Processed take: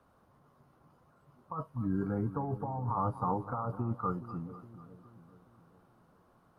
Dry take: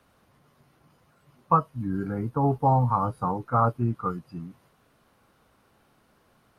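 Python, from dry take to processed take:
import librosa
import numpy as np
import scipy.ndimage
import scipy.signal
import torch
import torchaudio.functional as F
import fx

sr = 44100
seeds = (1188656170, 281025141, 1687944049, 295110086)

p1 = fx.over_compress(x, sr, threshold_db=-27.0, ratio=-1.0)
p2 = fx.high_shelf_res(p1, sr, hz=1600.0, db=-8.0, q=1.5)
p3 = p2 + fx.echo_split(p2, sr, split_hz=510.0, low_ms=416, high_ms=249, feedback_pct=52, wet_db=-13.5, dry=0)
y = p3 * librosa.db_to_amplitude(-6.5)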